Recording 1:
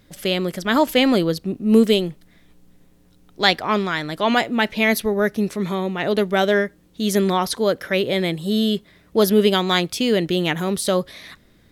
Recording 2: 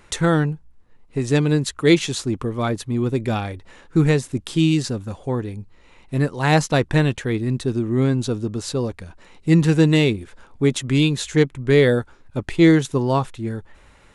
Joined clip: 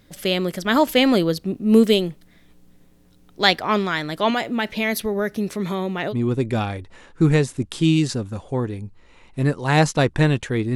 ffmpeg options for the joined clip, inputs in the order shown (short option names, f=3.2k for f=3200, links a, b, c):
-filter_complex "[0:a]asettb=1/sr,asplit=3[a][b][c];[a]atrim=end=4.304[d];[b]atrim=start=4.3:end=6.15,asetpts=PTS-STARTPTS,afade=t=in:d=0.004:c=qsin,afade=t=out:st=1.846:d=0.004:c=qsin,acompressor=threshold=-21dB:ratio=2:attack=3.2:release=140:knee=1:detection=peak[e];[c]atrim=start=6.146[f];[d][e]acrossfade=d=0.004:c1=hsin:c2=qsin[g];[g][f]acrossfade=d=0.004:c1=qsin:c2=hsin,apad=whole_dur=10.75,atrim=end=10.75,atrim=end=6.15,asetpts=PTS-STARTPTS[h];[1:a]atrim=start=2.82:end=7.5,asetpts=PTS-STARTPTS[i];[h][i]acrossfade=d=0.08:c1=tri:c2=tri"